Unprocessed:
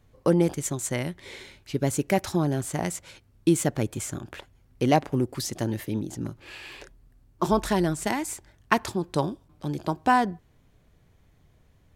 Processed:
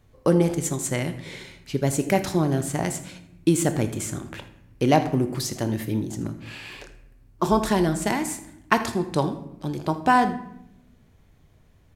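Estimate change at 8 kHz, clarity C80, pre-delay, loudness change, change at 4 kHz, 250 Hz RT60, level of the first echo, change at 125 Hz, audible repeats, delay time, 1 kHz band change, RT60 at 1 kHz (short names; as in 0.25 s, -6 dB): +2.5 dB, 13.0 dB, 19 ms, +2.5 dB, +2.5 dB, 1.3 s, -17.5 dB, +3.0 dB, 1, 80 ms, +2.5 dB, 0.75 s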